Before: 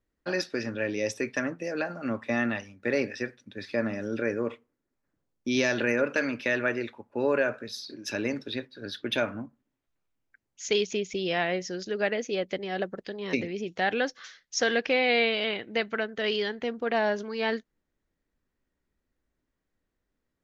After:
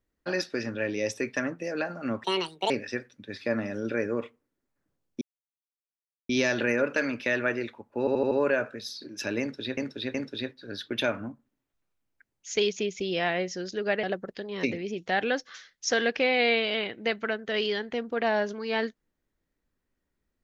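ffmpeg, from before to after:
-filter_complex "[0:a]asplit=11[s0][s1][s2][s3][s4][s5][s6][s7][s8][s9][s10];[s0]atrim=end=2.244[s11];[s1]atrim=start=2.24:end=2.98,asetpts=PTS-STARTPTS,asetrate=70560,aresample=44100,atrim=end_sample=20396,asetpts=PTS-STARTPTS[s12];[s2]atrim=start=2.976:end=5.49,asetpts=PTS-STARTPTS,afade=t=out:st=2.51:d=0.004:c=hsin,apad=pad_dur=1.08[s13];[s3]atrim=start=5.49:end=7.272,asetpts=PTS-STARTPTS,afade=t=in:d=0.004:c=hsin[s14];[s4]atrim=start=7.188:end=7.272[s15];[s5]atrim=start=7.188:end=7.272[s16];[s6]atrim=start=7.188:end=7.272[s17];[s7]atrim=start=7.188:end=8.652[s18];[s8]atrim=start=8.278:end=8.652[s19];[s9]atrim=start=8.278:end=12.172[s20];[s10]atrim=start=12.728[s21];[s11][s12]acrossfade=d=0.004:c1=hsin:c2=hsin[s22];[s13][s14]concat=n=2:v=0:a=1[s23];[s22][s23]acrossfade=d=0.004:c1=hsin:c2=hsin[s24];[s24][s15]acrossfade=d=0.004:c1=hsin:c2=hsin[s25];[s25][s16]acrossfade=d=0.004:c1=hsin:c2=hsin[s26];[s26][s17]acrossfade=d=0.004:c1=hsin:c2=hsin[s27];[s27][s18]acrossfade=d=0.004:c1=hsin:c2=hsin[s28];[s28][s19]acrossfade=d=0.004:c1=hsin:c2=hsin[s29];[s29][s20]acrossfade=d=0.004:c1=hsin:c2=hsin[s30];[s30][s21]acrossfade=d=0.004:c1=hsin:c2=hsin"

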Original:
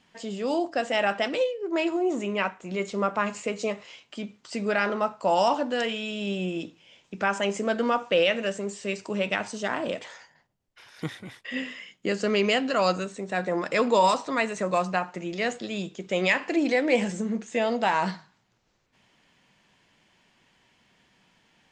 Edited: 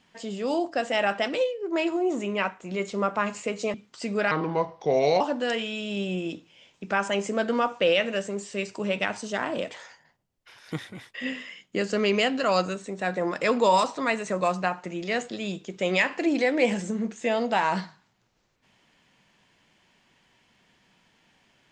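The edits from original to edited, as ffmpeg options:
-filter_complex "[0:a]asplit=4[s0][s1][s2][s3];[s0]atrim=end=3.742[s4];[s1]atrim=start=4.248:end=4.824[s5];[s2]atrim=start=4.82:end=5.51,asetpts=PTS-STARTPTS,asetrate=33957,aresample=44100,atrim=end_sample=39518,asetpts=PTS-STARTPTS[s6];[s3]atrim=start=5.506[s7];[s4][s5]acrossfade=d=0.004:c1=hsin:c2=hsin[s8];[s8][s6]acrossfade=d=0.004:c1=hsin:c2=hsin[s9];[s9][s7]acrossfade=d=0.004:c1=hsin:c2=hsin"

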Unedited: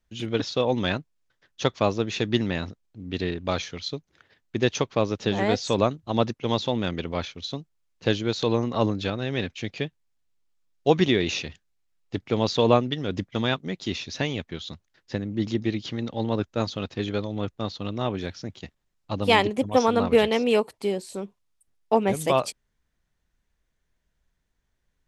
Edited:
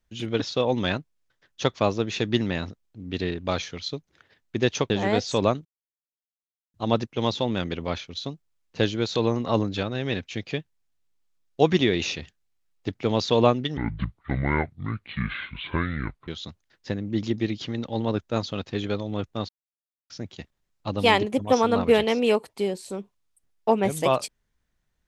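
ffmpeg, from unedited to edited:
-filter_complex "[0:a]asplit=7[s0][s1][s2][s3][s4][s5][s6];[s0]atrim=end=4.902[s7];[s1]atrim=start=5.258:end=6.01,asetpts=PTS-STARTPTS,afade=t=out:st=0.748:d=0.004:c=hsin,apad=pad_dur=1.09[s8];[s2]atrim=start=6.01:end=13.044,asetpts=PTS-STARTPTS,afade=t=in:d=0.004:c=hsin[s9];[s3]atrim=start=13.04:end=14.52,asetpts=PTS-STARTPTS,asetrate=26019,aresample=44100[s10];[s4]atrim=start=14.516:end=17.73,asetpts=PTS-STARTPTS,afade=t=out:st=3.21:d=0.004:c=hsin[s11];[s5]atrim=start=17.73:end=18.34,asetpts=PTS-STARTPTS,volume=0[s12];[s6]atrim=start=18.34,asetpts=PTS-STARTPTS,afade=t=in:d=0.004:c=hsin[s13];[s8][s9]concat=n=2:v=0:a=1[s14];[s7][s14]acrossfade=d=0.004:c1=hsin:c2=hsin[s15];[s15][s10]acrossfade=d=0.004:c1=hsin:c2=hsin[s16];[s11][s12][s13]concat=n=3:v=0:a=1[s17];[s16][s17]acrossfade=d=0.004:c1=hsin:c2=hsin"

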